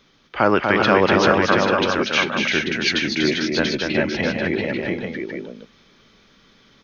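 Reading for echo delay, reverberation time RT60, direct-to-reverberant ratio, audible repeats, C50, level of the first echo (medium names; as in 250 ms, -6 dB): 241 ms, no reverb, no reverb, 4, no reverb, -4.5 dB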